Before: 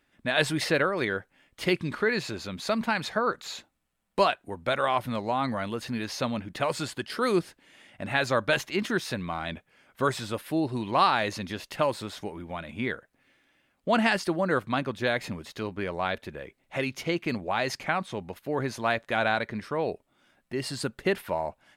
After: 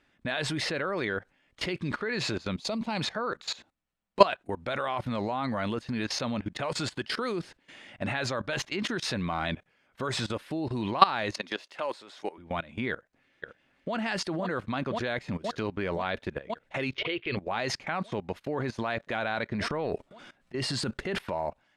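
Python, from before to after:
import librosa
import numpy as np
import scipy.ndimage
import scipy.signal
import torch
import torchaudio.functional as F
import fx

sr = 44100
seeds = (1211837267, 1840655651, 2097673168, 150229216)

y = fx.peak_eq(x, sr, hz=1600.0, db=-13.5, octaves=0.8, at=(2.57, 3.01))
y = fx.highpass(y, sr, hz=400.0, slope=12, at=(11.35, 12.38))
y = fx.echo_throw(y, sr, start_s=12.9, length_s=1.04, ms=520, feedback_pct=75, wet_db=-6.0)
y = fx.curve_eq(y, sr, hz=(120.0, 200.0, 400.0, 750.0, 3300.0, 7600.0), db=(0, -18, 5, -7, 9, -27), at=(16.95, 17.37))
y = fx.transient(y, sr, attack_db=-8, sustain_db=9, at=(19.52, 21.17), fade=0.02)
y = fx.level_steps(y, sr, step_db=19)
y = scipy.signal.sosfilt(scipy.signal.butter(2, 6600.0, 'lowpass', fs=sr, output='sos'), y)
y = F.gain(torch.from_numpy(y), 7.5).numpy()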